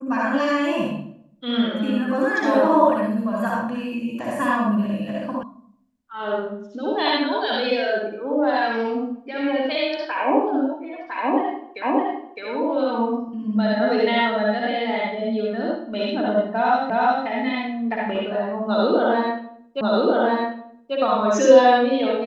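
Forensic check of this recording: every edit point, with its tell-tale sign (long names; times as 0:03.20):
0:05.43: cut off before it has died away
0:11.82: the same again, the last 0.61 s
0:16.90: the same again, the last 0.36 s
0:19.81: the same again, the last 1.14 s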